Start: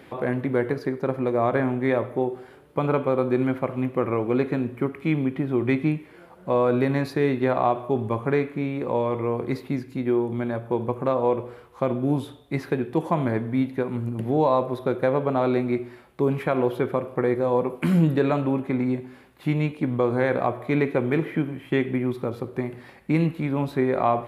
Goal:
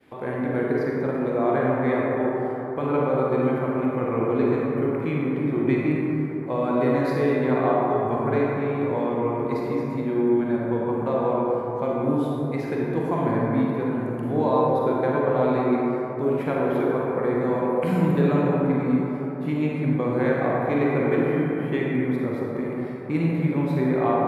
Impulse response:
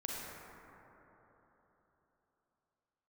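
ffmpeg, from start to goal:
-filter_complex "[0:a]agate=range=-33dB:threshold=-44dB:ratio=3:detection=peak[a];[1:a]atrim=start_sample=2205[b];[a][b]afir=irnorm=-1:irlink=0,volume=-1.5dB"

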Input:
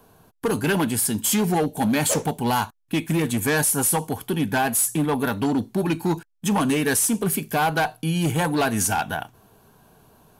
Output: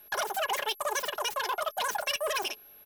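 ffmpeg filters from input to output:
-filter_complex "[0:a]acrossover=split=6200[a][b];[b]aeval=exprs='(mod(8.41*val(0)+1,2)-1)/8.41':c=same[c];[a][c]amix=inputs=2:normalize=0,aeval=exprs='val(0)+0.00794*sin(2*PI*3200*n/s)':c=same,asetrate=160524,aresample=44100,aecho=1:1:4.8:0.32,volume=-9dB"

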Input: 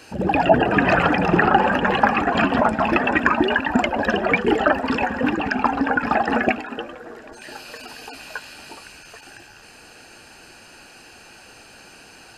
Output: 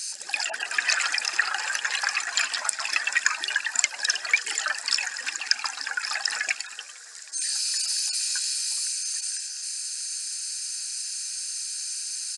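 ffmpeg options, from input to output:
-af "aexciter=amount=13.5:drive=7.4:freq=4.4k,highpass=f=2.1k:t=q:w=1.8,aresample=22050,aresample=44100,volume=-5dB"

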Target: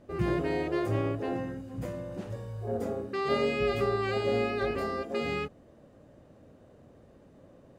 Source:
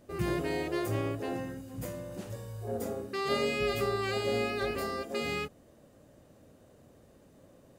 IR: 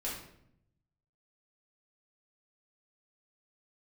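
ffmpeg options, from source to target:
-af "aemphasis=mode=reproduction:type=75kf,volume=3dB"

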